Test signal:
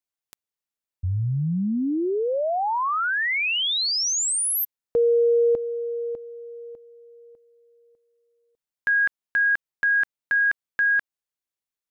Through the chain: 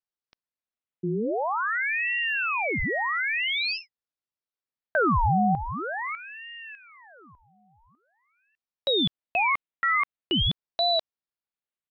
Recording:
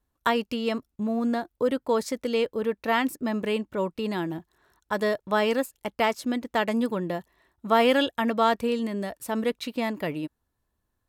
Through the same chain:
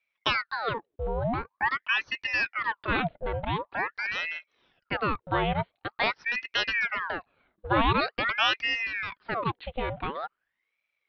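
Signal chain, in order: downsampling 8000 Hz; ring modulator with a swept carrier 1300 Hz, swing 80%, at 0.46 Hz

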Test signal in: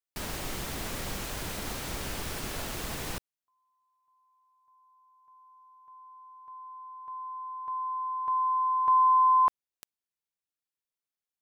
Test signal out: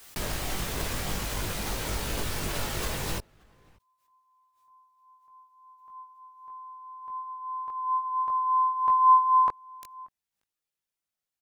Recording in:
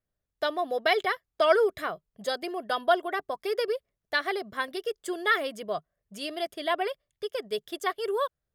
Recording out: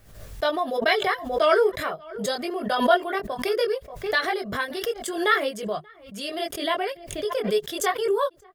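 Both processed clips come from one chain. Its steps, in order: outdoor echo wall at 100 m, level -27 dB; chorus voices 4, 0.48 Hz, delay 20 ms, depth 1.3 ms; backwards sustainer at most 76 dB/s; gain +6 dB

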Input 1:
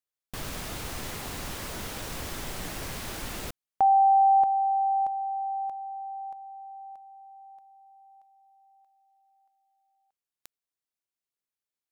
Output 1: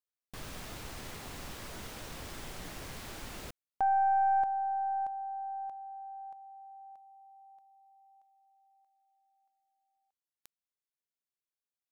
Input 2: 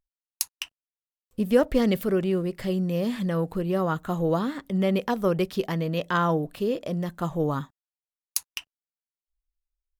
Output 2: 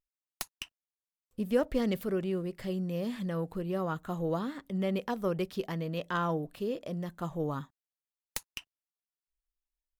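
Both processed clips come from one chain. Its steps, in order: tracing distortion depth 0.14 ms; gain -7.5 dB

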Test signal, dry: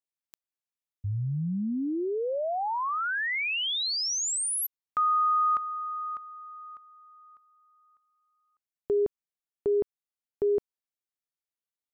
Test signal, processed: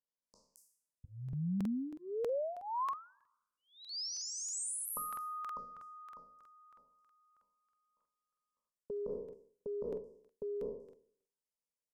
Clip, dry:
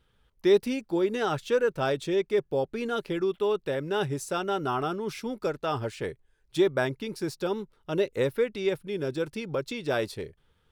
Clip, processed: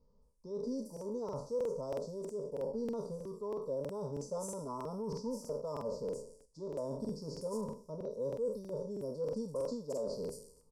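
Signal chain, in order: spectral trails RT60 0.59 s; Chebyshev band-stop 1000–4800 Hz, order 4; reverse; compressor 8:1, threshold -33 dBFS; reverse; LPF 8900 Hz 12 dB/oct; fixed phaser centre 510 Hz, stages 8; bands offset in time lows, highs 0.22 s, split 6000 Hz; dynamic EQ 340 Hz, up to -6 dB, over -55 dBFS, Q 3.2; crackling interface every 0.32 s, samples 2048, repeat, from 0.92; gain +1.5 dB; AAC 128 kbps 48000 Hz

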